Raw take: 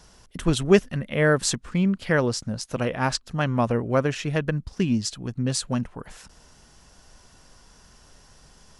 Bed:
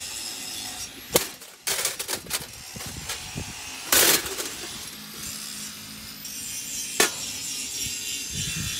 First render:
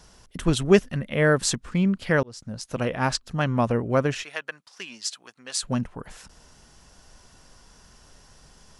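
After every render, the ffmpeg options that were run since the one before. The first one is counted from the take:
-filter_complex "[0:a]asettb=1/sr,asplit=3[a][b][c];[a]atrim=end=4.234[d];[b]atrim=start=4.23:end=5.63,asetpts=PTS-STARTPTS,afade=t=in:d=0.004:c=qsin,afade=t=out:st=1.396:d=0.004:c=qsin,highpass=1k[e];[c]atrim=start=5.626[f];[d][e]acrossfade=d=0.004:c1=hsin:c2=qsin[g];[g][f]acrossfade=d=0.004:c1=qsin:c2=hsin,asplit=2[h][i];[h]atrim=end=2.23,asetpts=PTS-STARTPTS,afade=t=out:st=2.226:d=0.004:c=hsin[j];[i]atrim=start=2.23,asetpts=PTS-STARTPTS,afade=t=in:d=0.78:c=qsin[k];[j][k]concat=n=2:v=0:a=1"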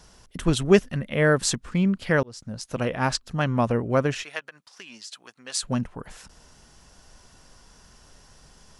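-filter_complex "[0:a]asettb=1/sr,asplit=3[a][b][c];[a]atrim=end=4.394[d];[b]atrim=start=4.39:end=5.12,asetpts=PTS-STARTPTS,afade=t=in:d=0.004:c=qsin,afade=t=out:st=0.726:d=0.004:c=qsin,acompressor=threshold=-38dB:ratio=5:attack=3.2:release=140:knee=1:detection=peak[e];[c]atrim=start=5.116[f];[d][e]acrossfade=d=0.004:c1=hsin:c2=qsin[g];[g][f]acrossfade=d=0.004:c1=qsin:c2=hsin"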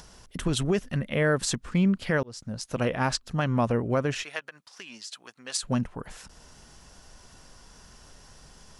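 -af "alimiter=limit=-14.5dB:level=0:latency=1:release=102,acompressor=mode=upward:threshold=-46dB:ratio=2.5"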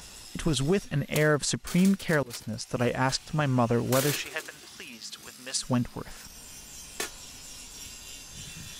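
-filter_complex "[1:a]volume=-13.5dB[a];[0:a][a]amix=inputs=2:normalize=0"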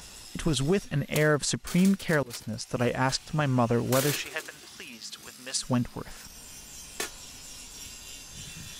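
-af anull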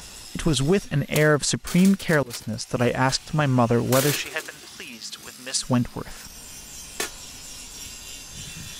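-af "volume=5dB"

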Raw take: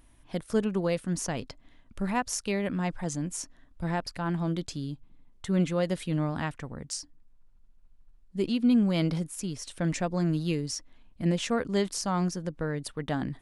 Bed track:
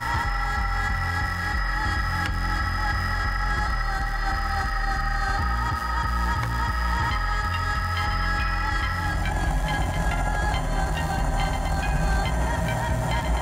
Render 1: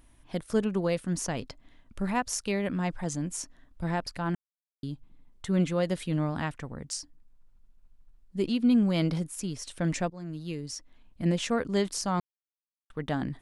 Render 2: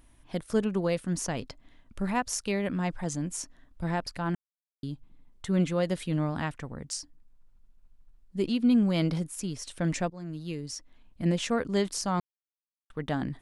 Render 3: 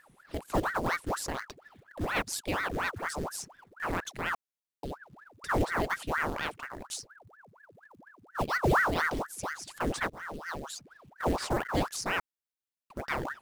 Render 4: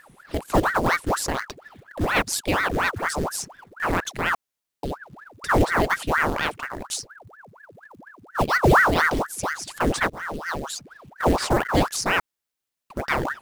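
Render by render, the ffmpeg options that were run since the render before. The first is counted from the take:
-filter_complex "[0:a]asplit=6[a][b][c][d][e][f];[a]atrim=end=4.35,asetpts=PTS-STARTPTS,afade=t=out:st=4.346:d=0.004:c=hsin[g];[b]atrim=start=4.35:end=4.83,asetpts=PTS-STARTPTS,volume=0[h];[c]atrim=start=4.83:end=10.1,asetpts=PTS-STARTPTS,afade=t=in:d=0.004:c=hsin,afade=t=out:st=5.266:d=0.004:c=hsin:silence=0.133352[i];[d]atrim=start=10.1:end=12.2,asetpts=PTS-STARTPTS,afade=t=in:d=1.12:silence=0.133352,afade=t=out:st=2.096:d=0.004:c=hsin[j];[e]atrim=start=12.2:end=12.9,asetpts=PTS-STARTPTS,volume=0[k];[f]atrim=start=12.9,asetpts=PTS-STARTPTS,afade=t=in:d=0.004:c=hsin[l];[g][h][i][j][k][l]concat=n=6:v=0:a=1"
-af anull
-af "acrusher=bits=5:mode=log:mix=0:aa=0.000001,aeval=exprs='val(0)*sin(2*PI*920*n/s+920*0.9/4.2*sin(2*PI*4.2*n/s))':c=same"
-af "volume=9dB"

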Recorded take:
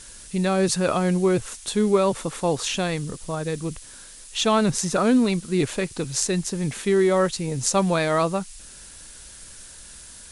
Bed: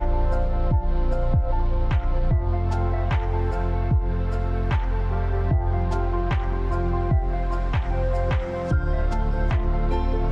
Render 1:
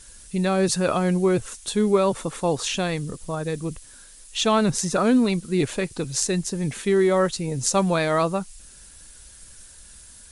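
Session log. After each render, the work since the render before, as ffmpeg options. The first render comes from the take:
-af "afftdn=nr=6:nf=-44"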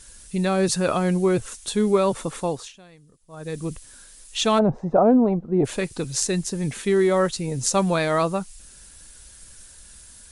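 -filter_complex "[0:a]asplit=3[a][b][c];[a]afade=t=out:st=4.58:d=0.02[d];[b]lowpass=f=750:t=q:w=3.4,afade=t=in:st=4.58:d=0.02,afade=t=out:st=5.64:d=0.02[e];[c]afade=t=in:st=5.64:d=0.02[f];[d][e][f]amix=inputs=3:normalize=0,asplit=3[g][h][i];[g]atrim=end=2.73,asetpts=PTS-STARTPTS,afade=t=out:st=2.38:d=0.35:silence=0.0668344[j];[h]atrim=start=2.73:end=3.28,asetpts=PTS-STARTPTS,volume=-23.5dB[k];[i]atrim=start=3.28,asetpts=PTS-STARTPTS,afade=t=in:d=0.35:silence=0.0668344[l];[j][k][l]concat=n=3:v=0:a=1"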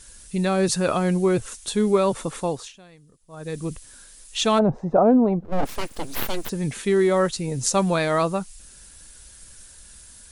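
-filter_complex "[0:a]asplit=3[a][b][c];[a]afade=t=out:st=5.44:d=0.02[d];[b]aeval=exprs='abs(val(0))':c=same,afade=t=in:st=5.44:d=0.02,afade=t=out:st=6.48:d=0.02[e];[c]afade=t=in:st=6.48:d=0.02[f];[d][e][f]amix=inputs=3:normalize=0"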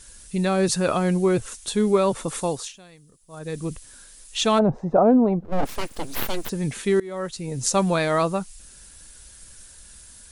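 -filter_complex "[0:a]asettb=1/sr,asplit=3[a][b][c];[a]atrim=end=2.284[d];[b]atrim=start=2.28:end=3.39,asetpts=PTS-STARTPTS,afade=t=in:d=0.004:c=qsin,afade=t=out:st=1.106:d=0.004:c=qsin,highshelf=f=4.6k:g=8.5[e];[c]atrim=start=3.386[f];[d][e]acrossfade=d=0.004:c1=hsin:c2=qsin[g];[g][f]acrossfade=d=0.004:c1=qsin:c2=hsin,asplit=2[h][i];[h]atrim=end=7,asetpts=PTS-STARTPTS,afade=t=out:st=6.996:d=0.004:c=hsin:silence=0.0707946[j];[i]atrim=start=7,asetpts=PTS-STARTPTS,afade=t=in:d=0.71:silence=0.0707946[k];[j][k]concat=n=2:v=0:a=1"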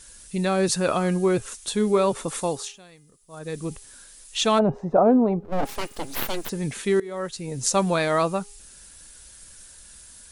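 -af "lowshelf=f=180:g=-4.5,bandreject=f=409.7:t=h:w=4,bandreject=f=819.4:t=h:w=4,bandreject=f=1.2291k:t=h:w=4,bandreject=f=1.6388k:t=h:w=4,bandreject=f=2.0485k:t=h:w=4,bandreject=f=2.4582k:t=h:w=4,bandreject=f=2.8679k:t=h:w=4"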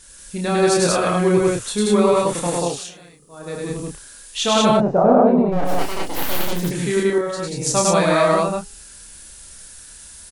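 -filter_complex "[0:a]asplit=2[a][b];[b]adelay=29,volume=-4dB[c];[a][c]amix=inputs=2:normalize=0,aecho=1:1:102|183.7:0.891|1"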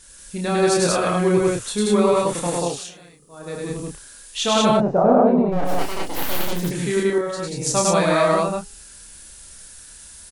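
-af "volume=-1.5dB"

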